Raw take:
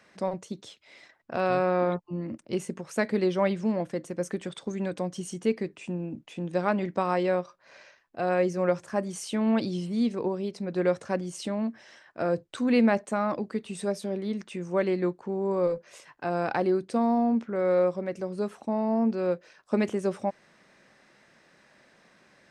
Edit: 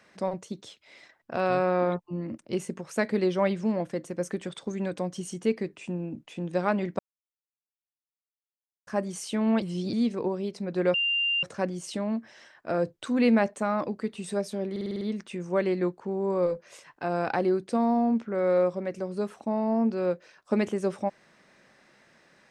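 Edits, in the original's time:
6.99–8.87 mute
9.62–9.93 reverse
10.94 add tone 2790 Hz -23 dBFS 0.49 s
14.22 stutter 0.05 s, 7 plays

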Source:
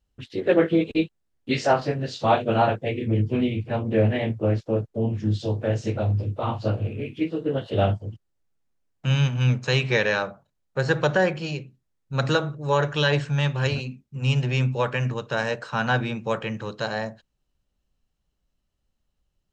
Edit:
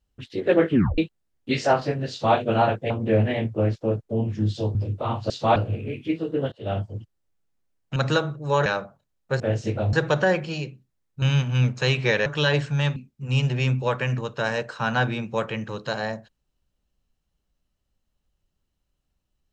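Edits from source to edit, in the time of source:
0.7 tape stop 0.28 s
2.1–2.36 copy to 6.68
2.9–3.75 cut
5.6–6.13 move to 10.86
7.64–8.08 fade in, from -23 dB
9.08–10.12 swap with 12.15–12.85
13.55–13.89 cut

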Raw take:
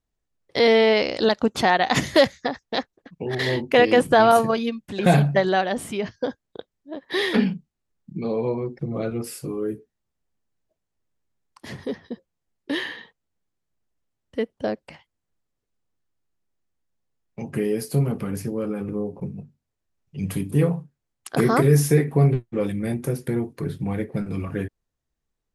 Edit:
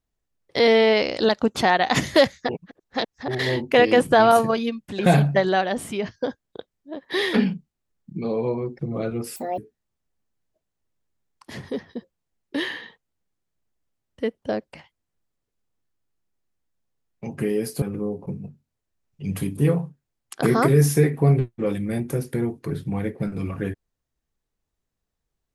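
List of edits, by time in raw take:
2.49–3.28 reverse
9.36–9.73 speed 169%
17.97–18.76 cut

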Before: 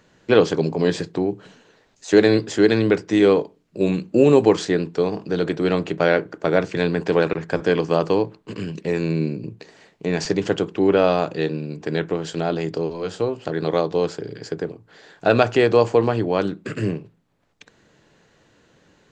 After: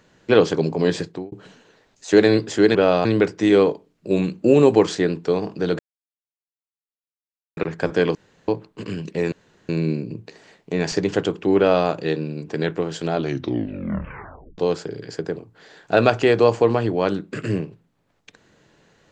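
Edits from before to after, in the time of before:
1.02–1.32 fade out
5.49–7.27 mute
7.85–8.18 room tone
9.02 insert room tone 0.37 s
10.91–11.21 copy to 2.75
12.48 tape stop 1.43 s

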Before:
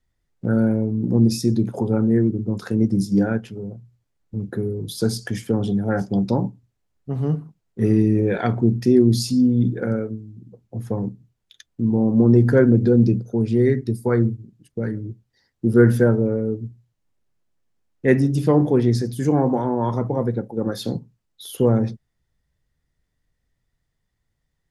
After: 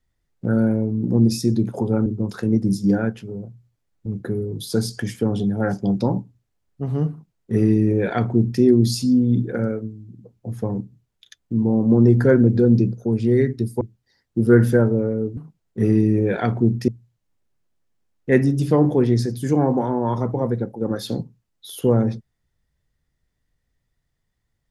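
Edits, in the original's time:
2.06–2.34 cut
7.38–8.89 copy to 16.64
14.09–15.08 cut

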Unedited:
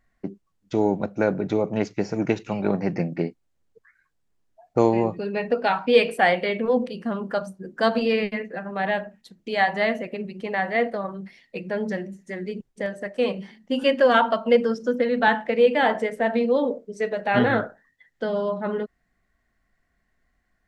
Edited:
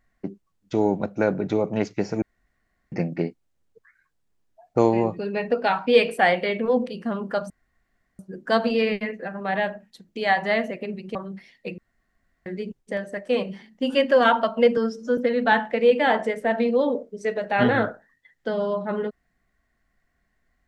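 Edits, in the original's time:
2.22–2.92 room tone
7.5 insert room tone 0.69 s
10.46–11.04 cut
11.67–12.35 room tone
14.66–14.93 stretch 1.5×

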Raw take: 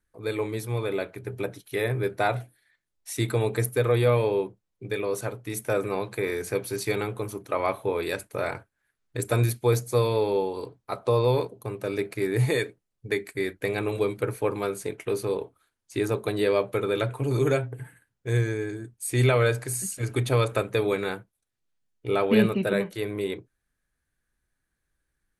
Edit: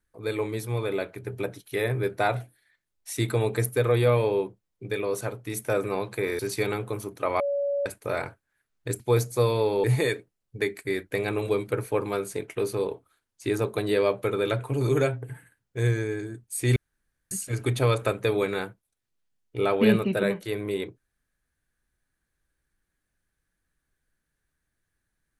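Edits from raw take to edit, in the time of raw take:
6.39–6.68 cut
7.69–8.15 bleep 566 Hz -23.5 dBFS
9.29–9.56 cut
10.4–12.34 cut
19.26–19.81 room tone

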